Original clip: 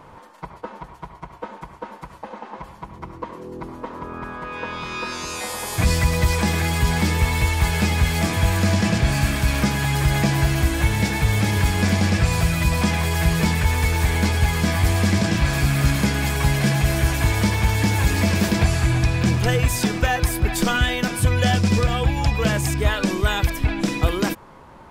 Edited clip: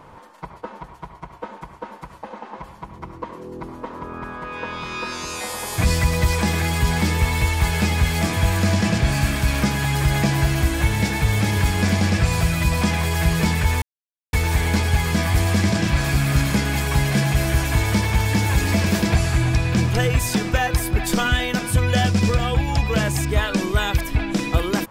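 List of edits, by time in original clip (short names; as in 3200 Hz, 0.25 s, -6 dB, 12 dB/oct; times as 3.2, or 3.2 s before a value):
13.82 insert silence 0.51 s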